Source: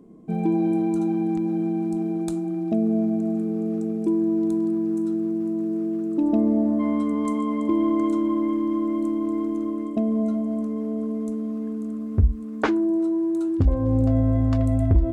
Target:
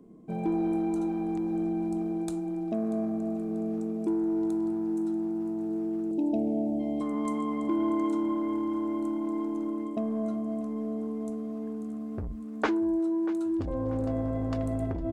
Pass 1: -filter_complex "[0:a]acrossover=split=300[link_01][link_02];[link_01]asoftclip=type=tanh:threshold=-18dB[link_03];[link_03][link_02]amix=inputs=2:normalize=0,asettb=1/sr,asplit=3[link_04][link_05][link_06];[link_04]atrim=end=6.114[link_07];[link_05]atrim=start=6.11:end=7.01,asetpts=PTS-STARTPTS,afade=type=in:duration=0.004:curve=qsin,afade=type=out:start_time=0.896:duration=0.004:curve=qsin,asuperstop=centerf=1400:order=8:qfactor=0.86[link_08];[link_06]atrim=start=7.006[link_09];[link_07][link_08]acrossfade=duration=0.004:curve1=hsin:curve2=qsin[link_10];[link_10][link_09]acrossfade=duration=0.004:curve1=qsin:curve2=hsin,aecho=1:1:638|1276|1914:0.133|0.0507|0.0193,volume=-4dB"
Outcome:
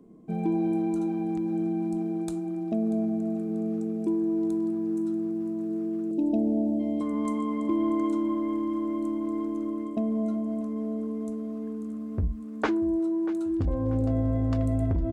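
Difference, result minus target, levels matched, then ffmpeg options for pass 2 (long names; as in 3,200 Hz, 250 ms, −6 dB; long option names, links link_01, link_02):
soft clipping: distortion −7 dB
-filter_complex "[0:a]acrossover=split=300[link_01][link_02];[link_01]asoftclip=type=tanh:threshold=-29dB[link_03];[link_03][link_02]amix=inputs=2:normalize=0,asettb=1/sr,asplit=3[link_04][link_05][link_06];[link_04]atrim=end=6.114[link_07];[link_05]atrim=start=6.11:end=7.01,asetpts=PTS-STARTPTS,afade=type=in:duration=0.004:curve=qsin,afade=type=out:start_time=0.896:duration=0.004:curve=qsin,asuperstop=centerf=1400:order=8:qfactor=0.86[link_08];[link_06]atrim=start=7.006[link_09];[link_07][link_08]acrossfade=duration=0.004:curve1=hsin:curve2=qsin[link_10];[link_10][link_09]acrossfade=duration=0.004:curve1=qsin:curve2=hsin,aecho=1:1:638|1276|1914:0.133|0.0507|0.0193,volume=-4dB"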